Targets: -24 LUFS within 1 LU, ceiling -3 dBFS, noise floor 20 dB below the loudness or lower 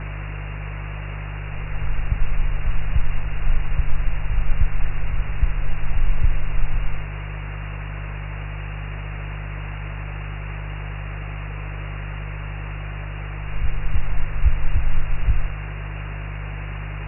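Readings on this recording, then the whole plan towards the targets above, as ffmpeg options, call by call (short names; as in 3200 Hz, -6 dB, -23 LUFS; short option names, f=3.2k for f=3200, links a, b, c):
hum 50 Hz; harmonics up to 150 Hz; hum level -27 dBFS; noise floor -30 dBFS; noise floor target -49 dBFS; loudness -29.0 LUFS; peak -5.0 dBFS; loudness target -24.0 LUFS
-> -af "bandreject=f=50:t=h:w=4,bandreject=f=100:t=h:w=4,bandreject=f=150:t=h:w=4"
-af "afftdn=nr=19:nf=-30"
-af "volume=5dB,alimiter=limit=-3dB:level=0:latency=1"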